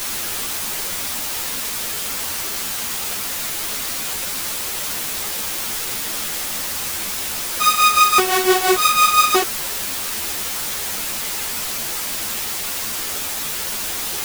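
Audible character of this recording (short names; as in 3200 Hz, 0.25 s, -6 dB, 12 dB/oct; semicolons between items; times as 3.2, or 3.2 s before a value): tremolo triangle 5.9 Hz, depth 80%; a quantiser's noise floor 6-bit, dither triangular; a shimmering, thickened sound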